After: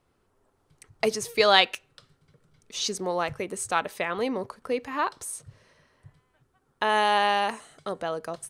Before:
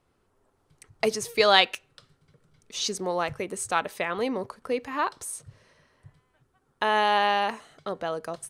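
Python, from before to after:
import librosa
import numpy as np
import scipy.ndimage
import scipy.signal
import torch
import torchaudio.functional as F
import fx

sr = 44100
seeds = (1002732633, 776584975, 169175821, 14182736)

y = fx.peak_eq(x, sr, hz=8800.0, db=10.0, octaves=0.68, at=(6.89, 8.02))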